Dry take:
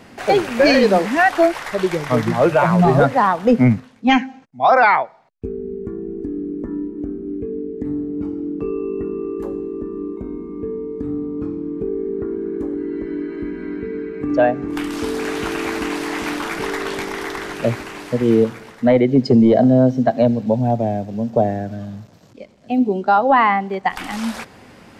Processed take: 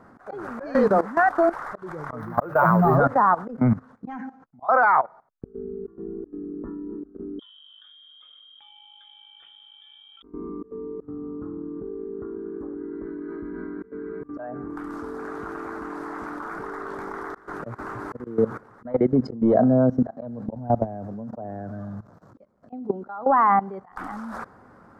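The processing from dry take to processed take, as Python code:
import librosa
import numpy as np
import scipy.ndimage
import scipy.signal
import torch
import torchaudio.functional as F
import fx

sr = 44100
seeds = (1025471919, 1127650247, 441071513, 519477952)

y = fx.resample_bad(x, sr, factor=3, down='filtered', up='hold', at=(2.2, 2.96))
y = fx.freq_invert(y, sr, carrier_hz=3500, at=(7.39, 10.23))
y = fx.echo_throw(y, sr, start_s=17.7, length_s=0.43, ms=250, feedback_pct=55, wet_db=-8.5)
y = fx.high_shelf_res(y, sr, hz=1900.0, db=-12.5, q=3.0)
y = fx.auto_swell(y, sr, attack_ms=253.0)
y = fx.level_steps(y, sr, step_db=17)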